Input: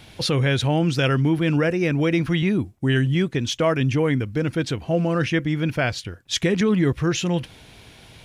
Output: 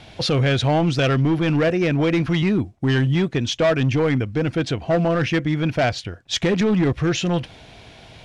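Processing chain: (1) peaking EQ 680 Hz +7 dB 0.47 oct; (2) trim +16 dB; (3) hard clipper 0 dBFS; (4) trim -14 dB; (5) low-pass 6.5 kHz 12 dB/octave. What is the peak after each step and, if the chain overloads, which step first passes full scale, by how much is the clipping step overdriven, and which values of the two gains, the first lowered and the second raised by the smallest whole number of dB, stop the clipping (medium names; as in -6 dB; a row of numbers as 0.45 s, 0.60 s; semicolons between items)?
-6.5 dBFS, +9.5 dBFS, 0.0 dBFS, -14.0 dBFS, -13.0 dBFS; step 2, 9.5 dB; step 2 +6 dB, step 4 -4 dB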